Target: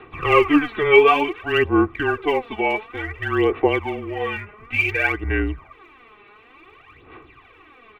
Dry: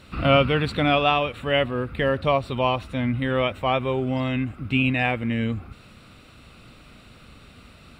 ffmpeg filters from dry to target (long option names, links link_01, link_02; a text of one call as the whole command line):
ffmpeg -i in.wav -af "highpass=frequency=330:width_type=q:width=0.5412,highpass=frequency=330:width_type=q:width=1.307,lowpass=frequency=3000:width_type=q:width=0.5176,lowpass=frequency=3000:width_type=q:width=0.7071,lowpass=frequency=3000:width_type=q:width=1.932,afreqshift=-160,aphaser=in_gain=1:out_gain=1:delay=4.9:decay=0.72:speed=0.56:type=sinusoidal,aecho=1:1:2.6:0.71" out.wav